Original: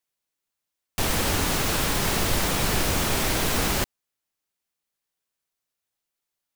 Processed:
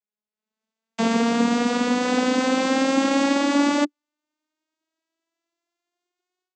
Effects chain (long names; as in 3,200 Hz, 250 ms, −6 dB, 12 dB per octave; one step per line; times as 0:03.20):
vocoder with a gliding carrier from G#3, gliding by +10 semitones
automatic gain control gain up to 16 dB
level −6.5 dB